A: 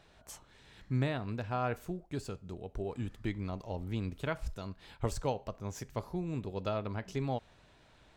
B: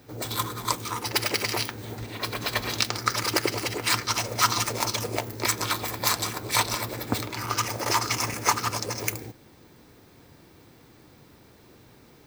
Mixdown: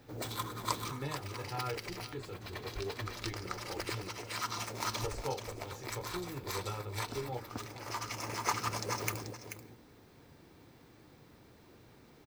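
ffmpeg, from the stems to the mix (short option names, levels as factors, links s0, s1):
-filter_complex "[0:a]aecho=1:1:2.3:0.91,flanger=delay=16:depth=7.5:speed=0.26,volume=0.596,asplit=3[s0][s1][s2];[s0]atrim=end=4.09,asetpts=PTS-STARTPTS,afade=t=out:st=4.086:d=0.004:c=hsin[s3];[s1]atrim=start=4.09:end=4.84,asetpts=PTS-STARTPTS,volume=0[s4];[s2]atrim=start=4.84,asetpts=PTS-STARTPTS,afade=t=in:d=0.004:c=hsin[s5];[s3][s4][s5]concat=n=3:v=0:a=1,asplit=3[s6][s7][s8];[s7]volume=0.158[s9];[1:a]volume=0.531,asplit=2[s10][s11];[s11]volume=0.316[s12];[s8]apad=whole_len=540683[s13];[s10][s13]sidechaincompress=threshold=0.00282:ratio=10:attack=16:release=1320[s14];[s9][s12]amix=inputs=2:normalize=0,aecho=0:1:435:1[s15];[s6][s14][s15]amix=inputs=3:normalize=0,highshelf=f=5300:g=-5"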